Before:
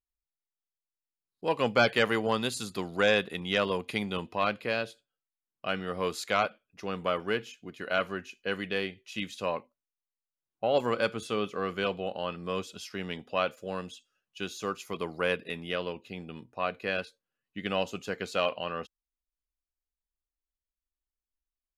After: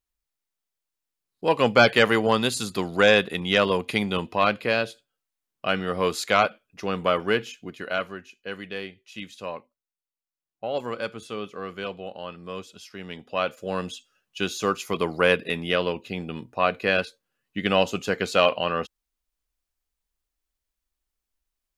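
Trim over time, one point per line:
7.62 s +7 dB
8.19 s -2.5 dB
12.98 s -2.5 dB
13.91 s +9 dB

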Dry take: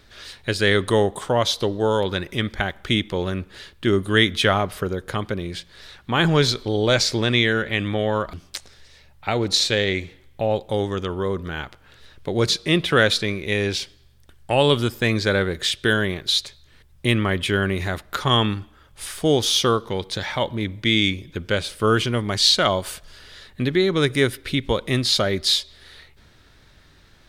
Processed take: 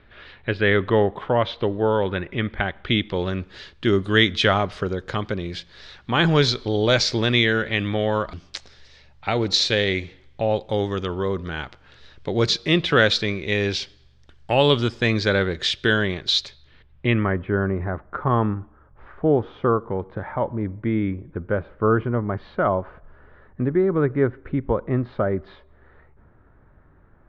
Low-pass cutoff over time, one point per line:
low-pass 24 dB/octave
2.49 s 2.8 kHz
3.47 s 5.9 kHz
16.45 s 5.9 kHz
17.12 s 2.6 kHz
17.42 s 1.4 kHz

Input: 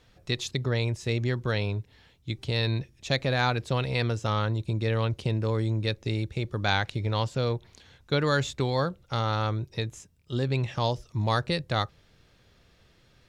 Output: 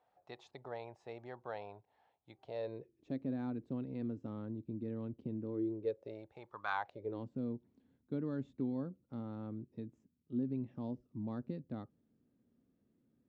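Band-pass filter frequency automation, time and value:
band-pass filter, Q 5.2
2.42 s 770 Hz
3.18 s 260 Hz
5.42 s 260 Hz
6.71 s 1.2 kHz
7.25 s 250 Hz

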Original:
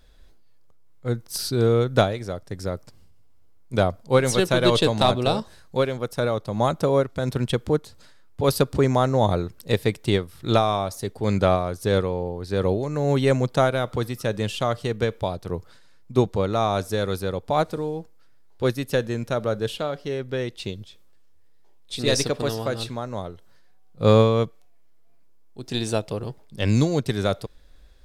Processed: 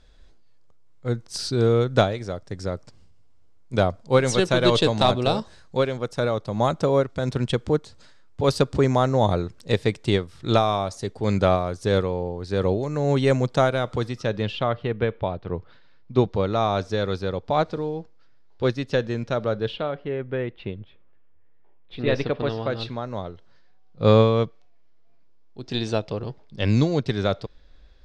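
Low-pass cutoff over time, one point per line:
low-pass 24 dB/octave
13.95 s 8 kHz
14.79 s 3.1 kHz
15.33 s 3.1 kHz
16.44 s 5.6 kHz
19.41 s 5.6 kHz
20.09 s 2.6 kHz
21.95 s 2.6 kHz
23.12 s 5.5 kHz

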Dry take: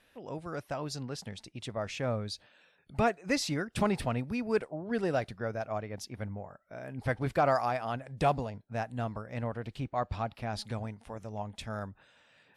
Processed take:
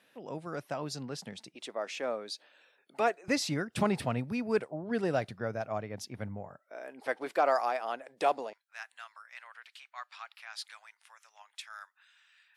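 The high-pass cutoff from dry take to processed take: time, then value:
high-pass 24 dB/octave
140 Hz
from 1.55 s 300 Hz
from 3.28 s 96 Hz
from 6.59 s 330 Hz
from 8.53 s 1.3 kHz

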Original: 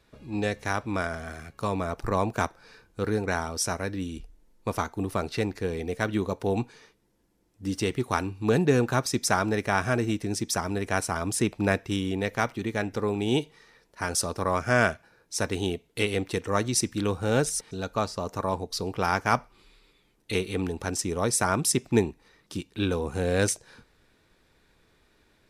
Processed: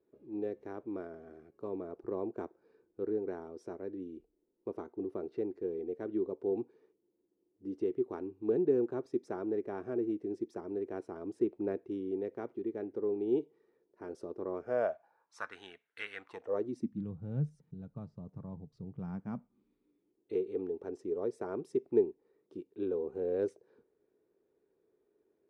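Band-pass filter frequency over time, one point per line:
band-pass filter, Q 4.8
14.54 s 370 Hz
15.61 s 1.6 kHz
16.18 s 1.6 kHz
16.57 s 430 Hz
17.07 s 150 Hz
18.92 s 150 Hz
20.38 s 400 Hz

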